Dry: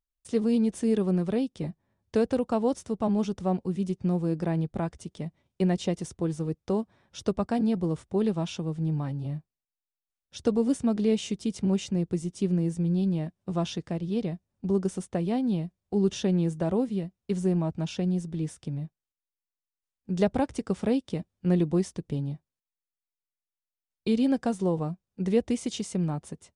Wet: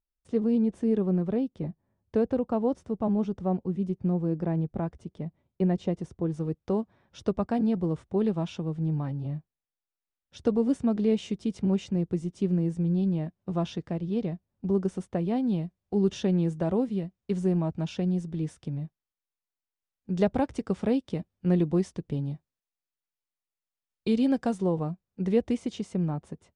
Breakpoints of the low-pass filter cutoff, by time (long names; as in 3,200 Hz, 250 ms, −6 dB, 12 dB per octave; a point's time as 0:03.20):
low-pass filter 6 dB per octave
1,000 Hz
from 0:06.34 2,300 Hz
from 0:15.36 3,700 Hz
from 0:22.24 6,100 Hz
from 0:24.58 3,100 Hz
from 0:25.57 1,700 Hz